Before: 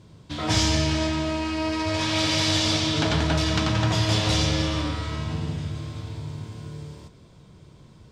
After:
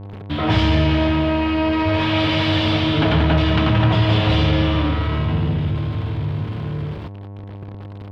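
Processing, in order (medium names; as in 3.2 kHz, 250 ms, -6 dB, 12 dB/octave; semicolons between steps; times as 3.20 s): peaking EQ 3 kHz +5.5 dB 0.58 oct; small samples zeroed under -43 dBFS; mains buzz 100 Hz, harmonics 11, -50 dBFS -7 dB/octave; power-law waveshaper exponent 0.7; distance through air 420 m; trim +4.5 dB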